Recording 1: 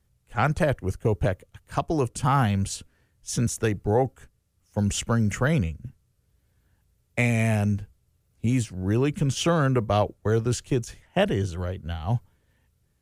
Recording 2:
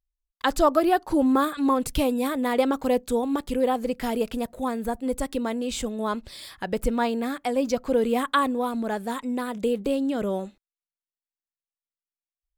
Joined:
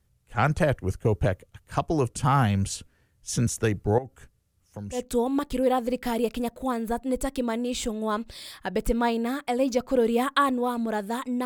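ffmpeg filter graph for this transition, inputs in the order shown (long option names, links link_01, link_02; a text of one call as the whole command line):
ffmpeg -i cue0.wav -i cue1.wav -filter_complex "[0:a]asettb=1/sr,asplit=3[link_01][link_02][link_03];[link_01]atrim=end=3.984[link_04];[link_02]atrim=start=3.98:end=5.08,asetpts=PTS-STARTPTS,afade=type=in:duration=0.004:curve=qsin,afade=type=out:start_time=1.096:duration=0.004:curve=qsin,acompressor=threshold=-37dB:ratio=3:attack=3.2:release=140:knee=1:detection=peak[link_05];[link_03]atrim=start=5.076[link_06];[link_04][link_05]acrossfade=duration=0.004:curve1=hsin:curve2=qsin[link_07];[link_07][link_06]acrossfade=duration=0.004:curve1=qsin:curve2=hsin,apad=whole_dur=11.45,atrim=end=11.45,atrim=end=5.08,asetpts=PTS-STARTPTS[link_08];[1:a]atrim=start=2.87:end=9.42,asetpts=PTS-STARTPTS[link_09];[link_08][link_09]acrossfade=duration=0.18:curve1=tri:curve2=tri" out.wav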